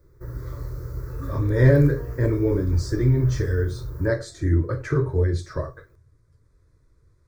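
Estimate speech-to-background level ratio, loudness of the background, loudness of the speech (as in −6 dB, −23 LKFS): 12.0 dB, −34.5 LKFS, −22.5 LKFS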